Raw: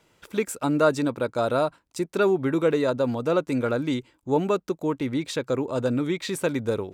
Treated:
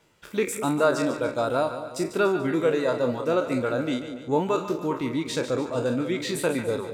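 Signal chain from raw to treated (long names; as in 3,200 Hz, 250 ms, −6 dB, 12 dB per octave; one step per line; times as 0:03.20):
peak hold with a decay on every bin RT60 0.68 s
reverb reduction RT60 0.73 s
echo with a time of its own for lows and highs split 700 Hz, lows 201 ms, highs 145 ms, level −10 dB
level −1.5 dB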